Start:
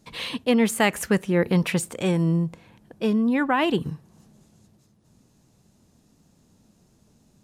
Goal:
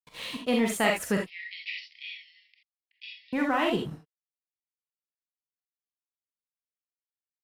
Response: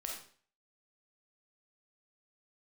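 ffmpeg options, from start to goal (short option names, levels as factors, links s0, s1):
-filter_complex "[0:a]agate=range=0.0224:threshold=0.00398:ratio=3:detection=peak,aeval=exprs='sgn(val(0))*max(abs(val(0))-0.00794,0)':c=same,asettb=1/sr,asplit=3[s0][s1][s2];[s0]atrim=end=1.224[s3];[s1]atrim=start=1.22:end=3.33,asetpts=PTS-STARTPTS,afade=t=in:d=0.004:c=qsin,afade=t=out:st=2.106:d=0.004:c=qsin,asuperpass=centerf=3200:order=20:qfactor=0.96[s4];[s2]atrim=start=3.326[s5];[s3][s4]acrossfade=d=0.004:c1=hsin:c2=qsin[s6];[s6][s5]acrossfade=d=0.004:c1=qsin:c2=hsin[s7];[1:a]atrim=start_sample=2205,atrim=end_sample=3969[s8];[s7][s8]afir=irnorm=-1:irlink=0,volume=0.794"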